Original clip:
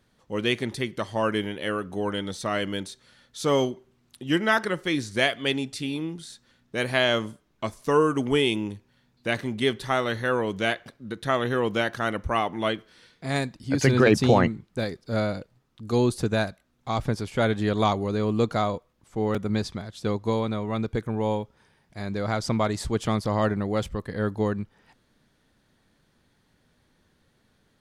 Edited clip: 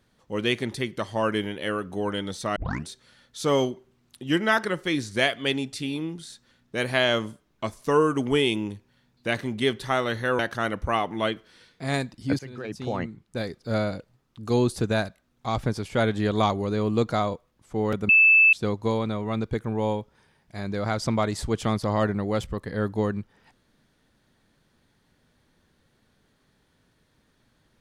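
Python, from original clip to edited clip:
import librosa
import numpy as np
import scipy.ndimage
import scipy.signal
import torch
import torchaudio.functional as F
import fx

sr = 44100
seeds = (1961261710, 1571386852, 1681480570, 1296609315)

y = fx.edit(x, sr, fx.tape_start(start_s=2.56, length_s=0.32),
    fx.cut(start_s=10.39, length_s=1.42),
    fx.fade_in_from(start_s=13.81, length_s=1.15, curve='qua', floor_db=-21.0),
    fx.bleep(start_s=19.51, length_s=0.44, hz=2630.0, db=-12.5), tone=tone)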